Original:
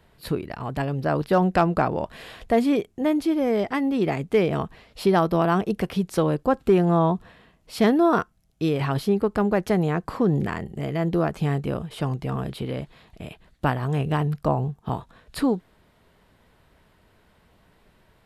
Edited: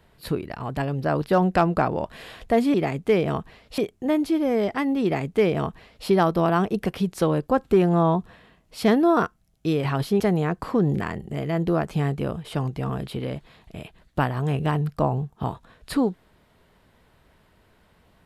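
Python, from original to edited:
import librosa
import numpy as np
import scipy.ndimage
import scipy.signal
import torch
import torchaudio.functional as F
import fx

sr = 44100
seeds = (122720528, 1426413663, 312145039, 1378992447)

y = fx.edit(x, sr, fx.duplicate(start_s=3.99, length_s=1.04, to_s=2.74),
    fx.cut(start_s=9.16, length_s=0.5), tone=tone)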